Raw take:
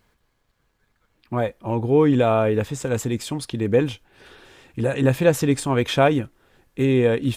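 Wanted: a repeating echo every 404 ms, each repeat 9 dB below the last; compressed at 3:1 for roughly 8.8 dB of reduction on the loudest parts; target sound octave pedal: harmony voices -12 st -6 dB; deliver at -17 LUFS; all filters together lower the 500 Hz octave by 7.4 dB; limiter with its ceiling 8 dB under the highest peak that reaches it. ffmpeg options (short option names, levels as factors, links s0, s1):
-filter_complex "[0:a]equalizer=f=500:t=o:g=-9,acompressor=threshold=0.0398:ratio=3,alimiter=level_in=1.12:limit=0.0631:level=0:latency=1,volume=0.891,aecho=1:1:404|808|1212|1616:0.355|0.124|0.0435|0.0152,asplit=2[s0][s1];[s1]asetrate=22050,aresample=44100,atempo=2,volume=0.501[s2];[s0][s2]amix=inputs=2:normalize=0,volume=7.08"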